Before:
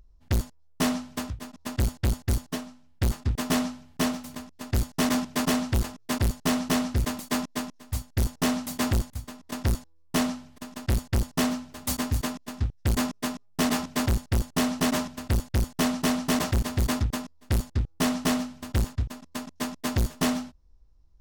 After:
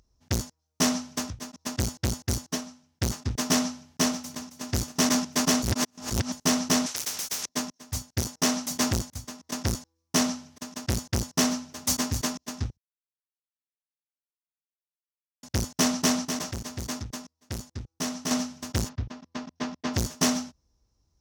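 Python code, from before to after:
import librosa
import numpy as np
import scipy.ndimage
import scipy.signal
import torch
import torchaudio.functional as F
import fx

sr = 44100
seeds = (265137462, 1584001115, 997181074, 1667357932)

y = fx.echo_throw(x, sr, start_s=4.14, length_s=0.5, ms=270, feedback_pct=65, wet_db=-11.0)
y = fx.spectral_comp(y, sr, ratio=10.0, at=(6.86, 7.49))
y = fx.low_shelf(y, sr, hz=100.0, db=-11.5, at=(8.2, 8.71))
y = fx.air_absorb(y, sr, metres=200.0, at=(18.88, 19.93), fade=0.02)
y = fx.edit(y, sr, fx.reverse_span(start_s=5.62, length_s=0.7),
    fx.silence(start_s=12.77, length_s=2.66),
    fx.clip_gain(start_s=16.25, length_s=2.06, db=-7.5), tone=tone)
y = scipy.signal.sosfilt(scipy.signal.butter(2, 86.0, 'highpass', fs=sr, output='sos'), y)
y = fx.peak_eq(y, sr, hz=5900.0, db=11.5, octaves=0.6)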